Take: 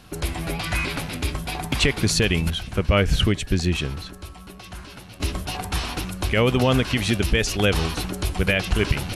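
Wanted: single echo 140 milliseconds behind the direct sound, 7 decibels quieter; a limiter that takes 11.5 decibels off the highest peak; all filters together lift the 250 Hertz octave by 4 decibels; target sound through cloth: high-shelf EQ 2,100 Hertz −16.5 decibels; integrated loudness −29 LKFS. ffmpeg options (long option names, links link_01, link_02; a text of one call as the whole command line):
ffmpeg -i in.wav -af "equalizer=frequency=250:width_type=o:gain=5.5,alimiter=limit=-17.5dB:level=0:latency=1,highshelf=frequency=2100:gain=-16.5,aecho=1:1:140:0.447" out.wav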